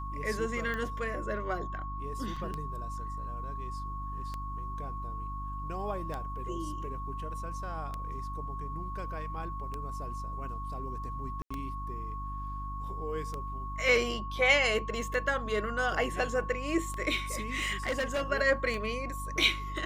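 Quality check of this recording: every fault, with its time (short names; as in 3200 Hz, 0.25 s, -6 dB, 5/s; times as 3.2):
hum 50 Hz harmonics 6 -39 dBFS
tick 33 1/3 rpm -23 dBFS
tone 1100 Hz -39 dBFS
2.36 gap 4.8 ms
11.42–11.51 gap 85 ms
17.34–18.22 clipped -27 dBFS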